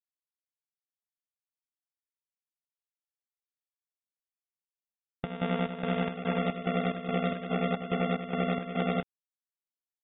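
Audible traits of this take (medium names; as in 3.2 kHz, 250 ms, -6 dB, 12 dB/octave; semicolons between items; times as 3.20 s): a buzz of ramps at a fixed pitch in blocks of 64 samples; chopped level 2.4 Hz, depth 65%, duty 60%; a quantiser's noise floor 10-bit, dither none; AAC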